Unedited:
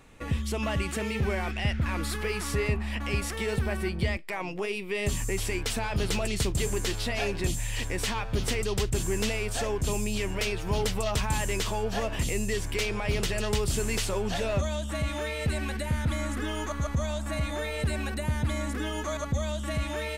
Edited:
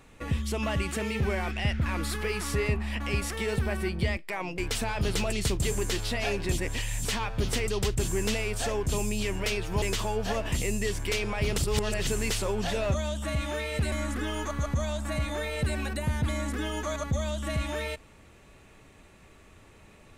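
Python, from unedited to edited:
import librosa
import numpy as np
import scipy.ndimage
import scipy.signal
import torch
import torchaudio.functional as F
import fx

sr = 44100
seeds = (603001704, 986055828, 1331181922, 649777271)

y = fx.edit(x, sr, fx.cut(start_s=4.58, length_s=0.95),
    fx.reverse_span(start_s=7.53, length_s=0.47),
    fx.cut(start_s=10.77, length_s=0.72),
    fx.reverse_span(start_s=13.25, length_s=0.49),
    fx.cut(start_s=15.59, length_s=0.54), tone=tone)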